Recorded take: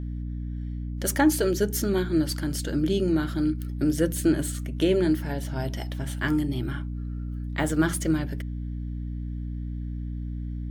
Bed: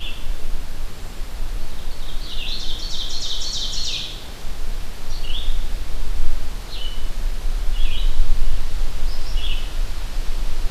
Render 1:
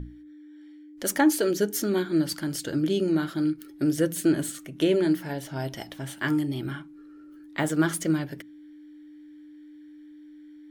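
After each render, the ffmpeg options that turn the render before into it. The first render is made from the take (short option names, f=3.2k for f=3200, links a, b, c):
-af "bandreject=f=60:t=h:w=6,bandreject=f=120:t=h:w=6,bandreject=f=180:t=h:w=6,bandreject=f=240:t=h:w=6"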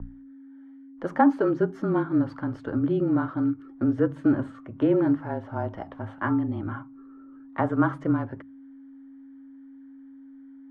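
-af "lowpass=f=1.1k:t=q:w=2.7,afreqshift=-28"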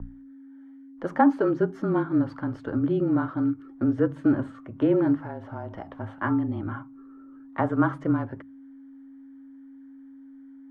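-filter_complex "[0:a]asettb=1/sr,asplit=3[a][b][c];[a]atrim=end=5.184[d];[b]atrim=start=5.18:end=5.87,asetpts=PTS-STARTPTS,afade=t=in:d=0.004:c=qsin,afade=t=out:st=0.686:d=0.004:c=qsin,acompressor=threshold=-30dB:ratio=6:attack=3.2:release=140:knee=1:detection=peak[e];[c]atrim=start=5.866[f];[d][e]acrossfade=d=0.004:c1=hsin:c2=qsin[g];[g][f]acrossfade=d=0.004:c1=qsin:c2=hsin"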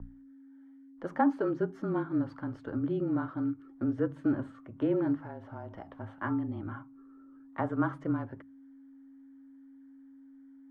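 -af "volume=-7dB"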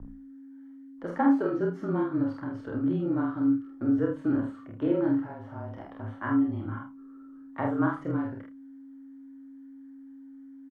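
-filter_complex "[0:a]asplit=2[a][b];[b]adelay=29,volume=-5dB[c];[a][c]amix=inputs=2:normalize=0,aecho=1:1:47|80:0.708|0.211"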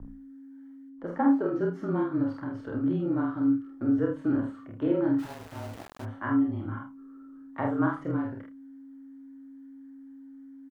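-filter_complex "[0:a]asettb=1/sr,asplit=3[a][b][c];[a]atrim=end=0.894[d];[b]atrim=start=0.89:end=1.56,asetpts=PTS-STARTPTS,afade=t=in:d=0.004:c=qsin,afade=t=out:st=0.666:d=0.004:c=qsin,highshelf=f=2.1k:g=-9[e];[c]atrim=start=1.556[f];[d][e]acrossfade=d=0.004:c1=hsin:c2=qsin[g];[g][f]acrossfade=d=0.004:c1=qsin:c2=hsin,asplit=3[h][i][j];[h]afade=t=out:st=5.18:d=0.02[k];[i]aeval=exprs='val(0)*gte(abs(val(0)),0.00944)':c=same,afade=t=in:st=5.18:d=0.02,afade=t=out:st=6.04:d=0.02[l];[j]afade=t=in:st=6.04:d=0.02[m];[k][l][m]amix=inputs=3:normalize=0"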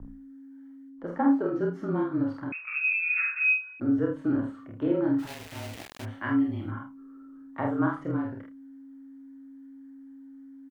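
-filter_complex "[0:a]asettb=1/sr,asplit=3[a][b][c];[a]atrim=end=2.524[d];[b]atrim=start=2.52:end=3.8,asetpts=PTS-STARTPTS,afade=t=in:d=0.004:c=qsin,afade=t=out:st=1.276:d=0.004:c=qsin,lowpass=f=2.4k:t=q:w=0.5098,lowpass=f=2.4k:t=q:w=0.6013,lowpass=f=2.4k:t=q:w=0.9,lowpass=f=2.4k:t=q:w=2.563,afreqshift=-2800[e];[c]atrim=start=3.796[f];[d][e]acrossfade=d=0.004:c1=hsin:c2=qsin[g];[g][f]acrossfade=d=0.004:c1=qsin:c2=hsin,asettb=1/sr,asplit=3[h][i][j];[h]atrim=end=5.274[k];[i]atrim=start=5.27:end=6.71,asetpts=PTS-STARTPTS,afade=t=in:d=0.004:c=qsin,afade=t=out:st=1.436:d=0.004:c=qsin,highshelf=f=1.7k:t=q:w=1.5:g=7[l];[j]atrim=start=6.706[m];[k][l]acrossfade=d=0.004:c1=hsin:c2=qsin[n];[n][m]acrossfade=d=0.004:c1=qsin:c2=hsin"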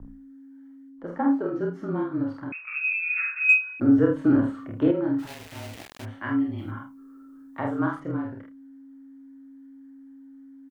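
-filter_complex "[0:a]asettb=1/sr,asplit=3[a][b][c];[a]atrim=end=3.494[d];[b]atrim=start=3.49:end=4.91,asetpts=PTS-STARTPTS,afade=t=in:d=0.004:c=qsin,afade=t=out:st=1.416:d=0.004:c=qsin,acontrast=86[e];[c]atrim=start=4.906[f];[d][e]acrossfade=d=0.004:c1=hsin:c2=qsin[g];[g][f]acrossfade=d=0.004:c1=qsin:c2=hsin,asettb=1/sr,asplit=3[h][i][j];[h]atrim=end=6.584[k];[i]atrim=start=6.58:end=8,asetpts=PTS-STARTPTS,afade=t=in:d=0.004:c=qsin,afade=t=out:st=1.416:d=0.004:c=qsin,highshelf=f=4.2k:g=11[l];[j]atrim=start=7.996[m];[k][l]acrossfade=d=0.004:c1=hsin:c2=qsin[n];[n][m]acrossfade=d=0.004:c1=qsin:c2=hsin"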